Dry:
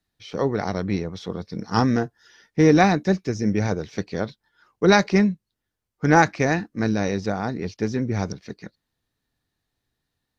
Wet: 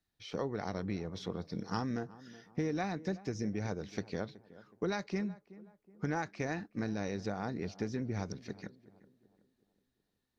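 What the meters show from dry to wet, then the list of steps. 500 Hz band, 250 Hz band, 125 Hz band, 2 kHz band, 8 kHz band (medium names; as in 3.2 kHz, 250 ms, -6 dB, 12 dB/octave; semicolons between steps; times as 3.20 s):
-15.5 dB, -15.5 dB, -14.5 dB, -17.5 dB, no reading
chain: compression 6:1, threshold -26 dBFS, peak gain reduction 14.5 dB; tape echo 373 ms, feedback 48%, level -16.5 dB, low-pass 1.1 kHz; trim -6.5 dB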